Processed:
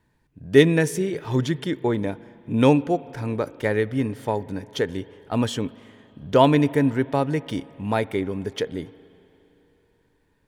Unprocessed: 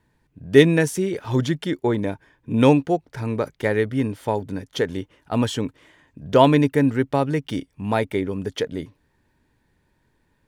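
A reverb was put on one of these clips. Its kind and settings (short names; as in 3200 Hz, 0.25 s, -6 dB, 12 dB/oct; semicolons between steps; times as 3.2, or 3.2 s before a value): spring tank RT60 3.2 s, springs 38/55 ms, chirp 60 ms, DRR 19 dB; gain -1.5 dB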